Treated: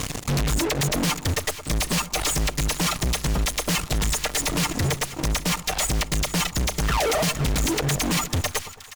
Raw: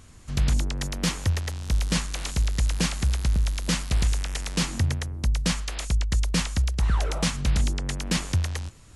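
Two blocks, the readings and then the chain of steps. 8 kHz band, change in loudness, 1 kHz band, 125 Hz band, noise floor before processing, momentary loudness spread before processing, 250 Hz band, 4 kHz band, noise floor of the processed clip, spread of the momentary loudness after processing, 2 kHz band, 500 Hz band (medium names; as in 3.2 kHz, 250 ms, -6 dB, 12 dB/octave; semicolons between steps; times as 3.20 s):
+7.5 dB, +3.0 dB, +9.5 dB, -1.0 dB, -48 dBFS, 4 LU, +3.5 dB, +5.0 dB, -40 dBFS, 3 LU, +6.0 dB, +10.0 dB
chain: median filter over 3 samples; reverb removal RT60 1.7 s; band-stop 1.5 kHz, Q 7.2; reverb removal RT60 0.63 s; bass shelf 90 Hz -7.5 dB; comb 6.6 ms, depth 62%; in parallel at +1 dB: compression, threshold -32 dBFS, peak gain reduction 12.5 dB; on the sum: fuzz box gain 42 dB, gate -47 dBFS; valve stage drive 21 dB, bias 0.6; two-band feedback delay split 990 Hz, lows 107 ms, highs 475 ms, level -14 dB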